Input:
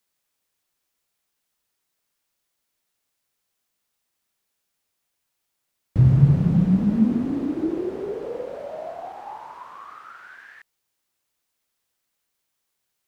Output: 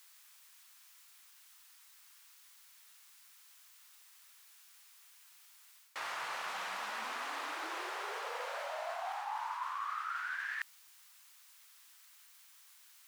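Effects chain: HPF 1000 Hz 24 dB/oct; reverse; compressor 4:1, threshold -56 dBFS, peak gain reduction 14.5 dB; reverse; gain +17 dB

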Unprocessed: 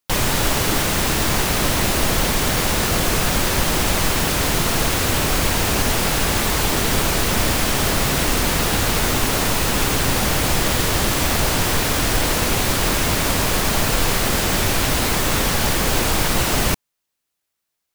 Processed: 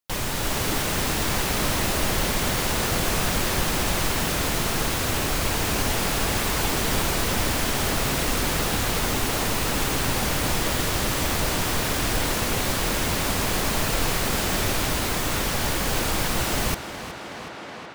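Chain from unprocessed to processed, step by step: tape echo 0.371 s, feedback 83%, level -10 dB, low-pass 5600 Hz; AGC gain up to 5 dB; gain -8.5 dB

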